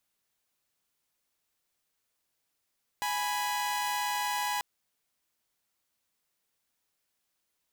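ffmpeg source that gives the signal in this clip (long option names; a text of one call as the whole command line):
ffmpeg -f lavfi -i "aevalsrc='0.0335*((2*mod(830.61*t,1)-1)+(2*mod(987.77*t,1)-1))':duration=1.59:sample_rate=44100" out.wav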